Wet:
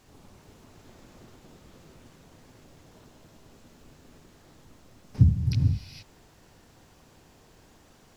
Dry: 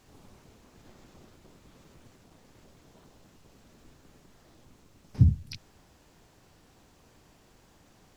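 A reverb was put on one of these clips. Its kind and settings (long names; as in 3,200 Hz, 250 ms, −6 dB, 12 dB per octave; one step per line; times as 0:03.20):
reverb whose tail is shaped and stops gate 490 ms rising, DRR 2.5 dB
level +1.5 dB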